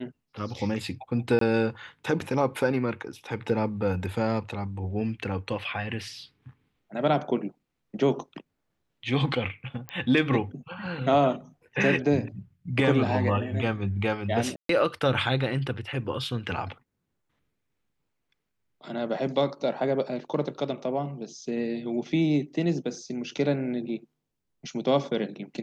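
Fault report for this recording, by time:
1.39–1.41 s: dropout 23 ms
9.89 s: pop -19 dBFS
14.56–14.69 s: dropout 133 ms

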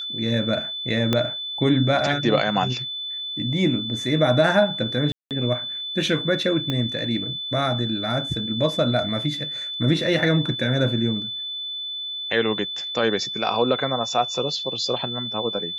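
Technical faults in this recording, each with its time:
whine 3.5 kHz -28 dBFS
1.13 s: pop -7 dBFS
5.12–5.31 s: dropout 188 ms
6.70 s: pop -12 dBFS

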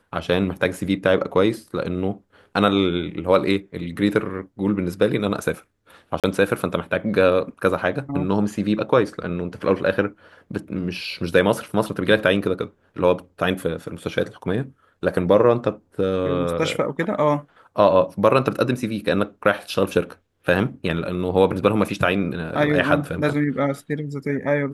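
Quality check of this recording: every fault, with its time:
6.20–6.24 s: dropout 37 ms

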